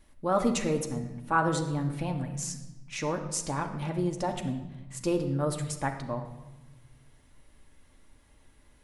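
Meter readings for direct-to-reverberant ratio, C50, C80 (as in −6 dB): 2.0 dB, 8.5 dB, 10.5 dB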